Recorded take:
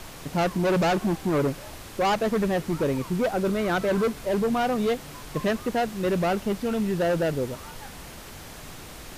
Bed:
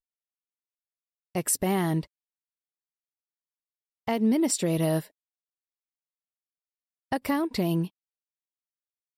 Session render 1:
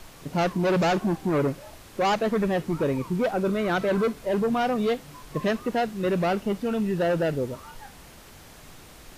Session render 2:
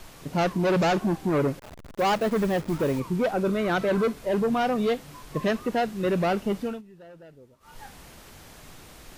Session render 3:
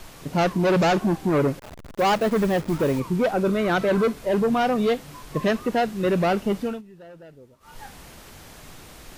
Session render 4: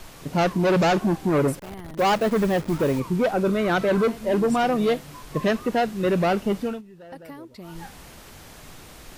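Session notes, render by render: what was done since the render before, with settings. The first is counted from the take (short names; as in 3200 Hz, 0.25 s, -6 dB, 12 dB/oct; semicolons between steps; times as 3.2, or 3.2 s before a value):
noise print and reduce 6 dB
1.59–3 level-crossing sampler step -36.5 dBFS; 6.61–7.81 dip -23.5 dB, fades 0.21 s
gain +3 dB
add bed -14.5 dB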